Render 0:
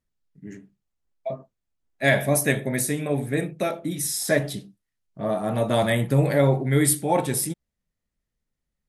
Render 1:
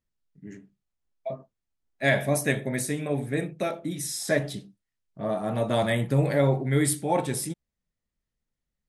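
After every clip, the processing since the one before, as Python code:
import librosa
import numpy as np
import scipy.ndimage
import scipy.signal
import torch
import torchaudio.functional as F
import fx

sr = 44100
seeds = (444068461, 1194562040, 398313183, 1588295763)

y = scipy.signal.sosfilt(scipy.signal.butter(2, 9500.0, 'lowpass', fs=sr, output='sos'), x)
y = F.gain(torch.from_numpy(y), -3.0).numpy()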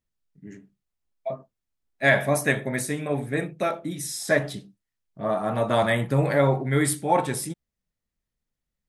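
y = fx.dynamic_eq(x, sr, hz=1200.0, q=0.92, threshold_db=-41.0, ratio=4.0, max_db=8)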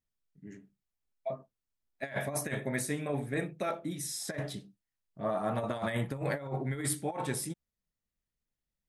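y = fx.over_compress(x, sr, threshold_db=-24.0, ratio=-0.5)
y = F.gain(torch.from_numpy(y), -8.0).numpy()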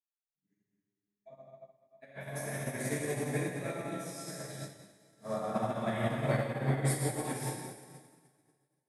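y = fx.rev_plate(x, sr, seeds[0], rt60_s=4.4, hf_ratio=0.9, predelay_ms=0, drr_db=-9.0)
y = fx.upward_expand(y, sr, threshold_db=-45.0, expansion=2.5)
y = F.gain(torch.from_numpy(y), -4.5).numpy()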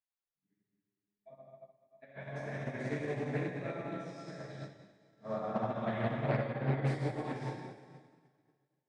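y = scipy.ndimage.gaussian_filter1d(x, 1.9, mode='constant')
y = fx.doppler_dist(y, sr, depth_ms=0.31)
y = F.gain(torch.from_numpy(y), -1.5).numpy()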